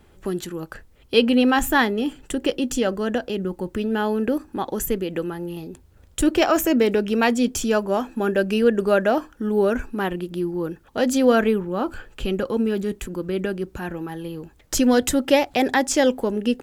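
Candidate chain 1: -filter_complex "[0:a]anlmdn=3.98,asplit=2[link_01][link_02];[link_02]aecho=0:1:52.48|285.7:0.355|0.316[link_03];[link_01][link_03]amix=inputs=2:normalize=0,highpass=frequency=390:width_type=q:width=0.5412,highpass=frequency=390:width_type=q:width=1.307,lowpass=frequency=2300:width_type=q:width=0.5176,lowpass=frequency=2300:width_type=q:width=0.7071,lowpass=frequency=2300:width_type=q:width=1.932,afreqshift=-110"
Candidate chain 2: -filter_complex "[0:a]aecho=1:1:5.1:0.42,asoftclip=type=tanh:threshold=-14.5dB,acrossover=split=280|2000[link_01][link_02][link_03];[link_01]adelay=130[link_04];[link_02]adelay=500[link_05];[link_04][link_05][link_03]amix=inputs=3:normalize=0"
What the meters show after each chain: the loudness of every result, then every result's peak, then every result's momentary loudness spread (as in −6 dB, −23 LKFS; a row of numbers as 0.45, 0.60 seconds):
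−24.5, −25.5 LKFS; −6.0, −8.0 dBFS; 14, 9 LU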